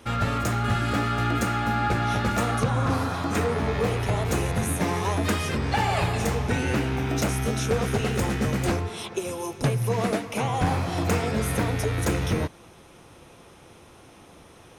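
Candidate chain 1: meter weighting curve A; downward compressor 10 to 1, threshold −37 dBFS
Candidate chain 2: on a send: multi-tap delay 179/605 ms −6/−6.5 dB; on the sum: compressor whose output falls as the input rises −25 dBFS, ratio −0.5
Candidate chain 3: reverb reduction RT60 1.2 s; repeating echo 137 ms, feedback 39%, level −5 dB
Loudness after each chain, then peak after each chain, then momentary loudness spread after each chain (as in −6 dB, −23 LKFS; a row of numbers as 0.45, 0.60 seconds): −40.0, −26.5, −26.5 LKFS; −23.5, −11.5, −12.0 dBFS; 13, 7, 3 LU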